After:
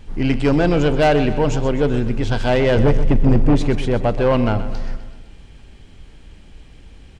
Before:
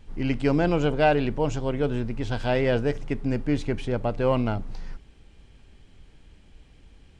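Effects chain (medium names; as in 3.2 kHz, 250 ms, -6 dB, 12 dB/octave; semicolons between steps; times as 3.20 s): 2.77–3.56 s: bass shelf 340 Hz +11.5 dB; saturation -18.5 dBFS, distortion -9 dB; on a send: feedback delay 127 ms, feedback 56%, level -13 dB; on the sum: trim +9 dB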